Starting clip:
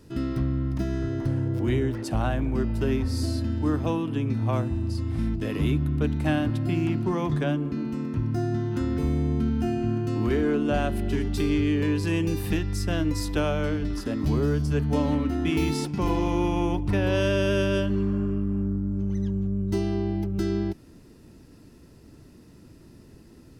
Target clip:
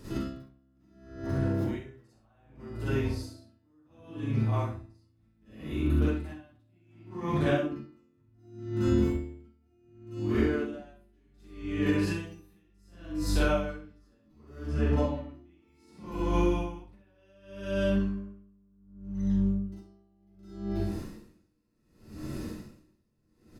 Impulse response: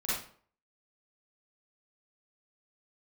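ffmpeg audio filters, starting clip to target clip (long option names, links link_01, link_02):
-filter_complex "[0:a]asettb=1/sr,asplit=3[link_01][link_02][link_03];[link_01]atrim=end=14.594[link_04];[link_02]atrim=start=14.59:end=15.64,asetpts=PTS-STARTPTS,afade=type=in:duration=0.004:curve=qsin,afade=type=out:start_time=1.046:duration=0.004:curve=qsin,lowpass=frequency=2400:poles=1[link_05];[link_03]atrim=start=15.636[link_06];[link_04][link_05]acrossfade=duration=0.004:curve1=hsin:curve2=qsin[link_07];[link_07][link_06]acrossfade=duration=0.004:curve1=qsin:curve2=hsin[link_08];[1:a]atrim=start_sample=2205[link_09];[link_08][link_09]afir=irnorm=-1:irlink=0,acompressor=threshold=-29dB:ratio=16,aecho=1:1:42|65:0.398|0.473,aeval=exprs='val(0)*pow(10,-40*(0.5-0.5*cos(2*PI*0.67*n/s))/20)':channel_layout=same,volume=7dB"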